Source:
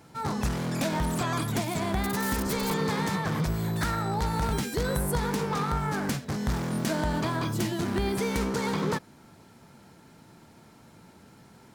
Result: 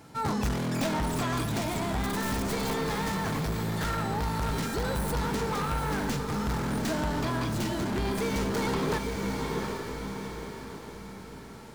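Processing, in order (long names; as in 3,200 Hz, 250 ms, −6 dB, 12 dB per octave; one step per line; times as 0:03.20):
stylus tracing distortion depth 0.12 ms
feedback delay with all-pass diffusion 763 ms, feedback 44%, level −6.5 dB
hard clipping −25 dBFS, distortion −12 dB
speech leveller within 4 dB 2 s
on a send at −19 dB: convolution reverb RT60 0.25 s, pre-delay 3 ms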